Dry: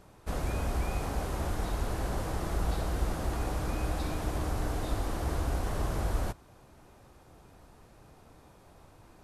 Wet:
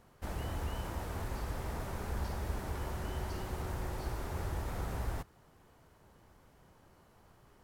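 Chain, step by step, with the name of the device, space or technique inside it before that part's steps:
nightcore (speed change +21%)
level −6.5 dB

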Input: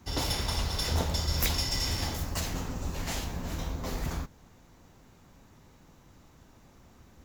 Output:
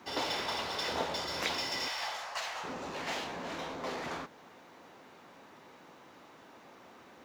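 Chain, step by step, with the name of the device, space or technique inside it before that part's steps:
0:01.88–0:02.64: inverse Chebyshev high-pass filter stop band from 190 Hz, stop band 60 dB
phone line with mismatched companding (band-pass filter 380–3,600 Hz; mu-law and A-law mismatch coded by mu)

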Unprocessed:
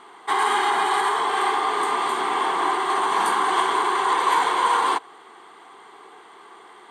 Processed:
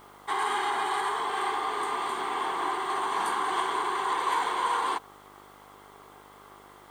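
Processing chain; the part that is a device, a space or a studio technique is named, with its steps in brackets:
video cassette with head-switching buzz (hum with harmonics 50 Hz, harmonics 28, −48 dBFS 0 dB per octave; white noise bed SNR 34 dB)
level −7.5 dB

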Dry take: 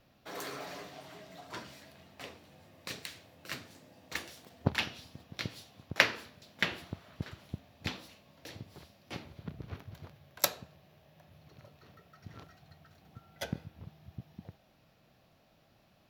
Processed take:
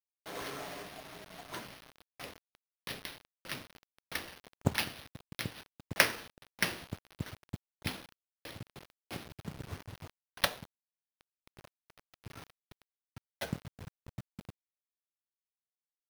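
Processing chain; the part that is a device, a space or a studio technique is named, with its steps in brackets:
early 8-bit sampler (sample-rate reduction 7,500 Hz, jitter 0%; bit reduction 8 bits)

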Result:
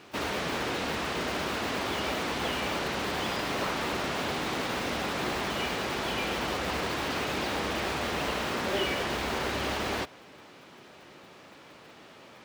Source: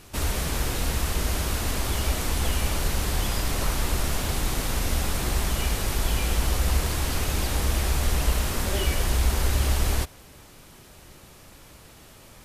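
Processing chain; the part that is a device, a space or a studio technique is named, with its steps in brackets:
early digital voice recorder (band-pass filter 230–3,600 Hz; one scale factor per block 5 bits)
level +2 dB

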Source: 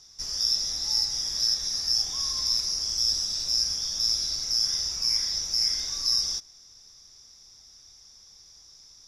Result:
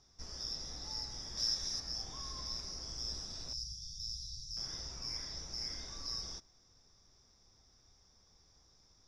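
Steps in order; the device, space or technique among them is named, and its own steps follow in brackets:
through cloth (low-pass filter 9,200 Hz 12 dB per octave; high-shelf EQ 2,200 Hz −17.5 dB)
0:01.37–0:01.80: high-shelf EQ 2,800 Hz +9 dB
0:03.53–0:04.57: Chebyshev band-stop filter 150–3,900 Hz, order 4
level −1.5 dB

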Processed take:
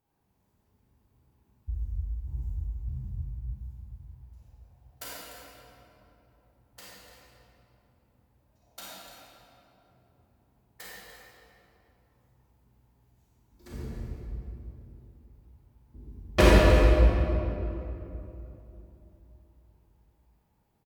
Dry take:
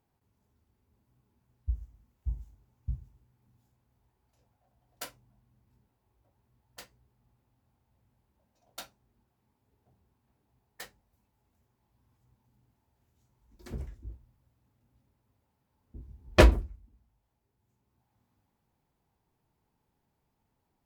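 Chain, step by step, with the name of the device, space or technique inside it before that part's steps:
cave (single-tap delay 295 ms −12.5 dB; convolution reverb RT60 3.0 s, pre-delay 29 ms, DRR −7.5 dB)
high-shelf EQ 11,000 Hz +5.5 dB
level −4 dB

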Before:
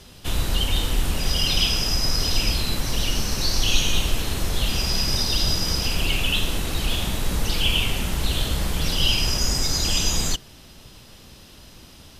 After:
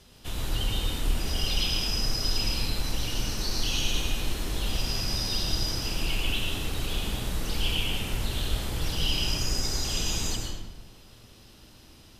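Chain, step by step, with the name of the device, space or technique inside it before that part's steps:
bathroom (convolution reverb RT60 1.2 s, pre-delay 98 ms, DRR 0.5 dB)
level −9 dB

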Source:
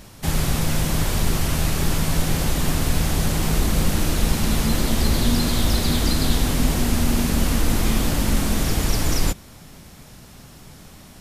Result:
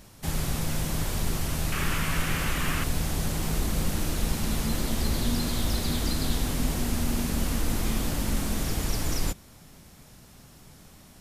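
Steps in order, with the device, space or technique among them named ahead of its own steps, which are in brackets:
0:01.72–0:02.84: flat-topped bell 1,800 Hz +9.5 dB
exciter from parts (in parallel at −11.5 dB: high-pass filter 4,600 Hz + soft clipping −29 dBFS, distortion −14 dB)
on the sum: level −7.5 dB

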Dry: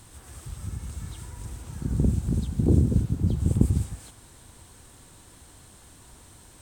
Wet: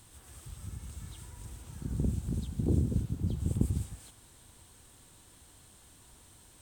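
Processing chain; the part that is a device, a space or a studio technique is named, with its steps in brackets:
presence and air boost (parametric band 3,200 Hz +3.5 dB 0.77 octaves; high-shelf EQ 9,800 Hz +6.5 dB)
level −8 dB

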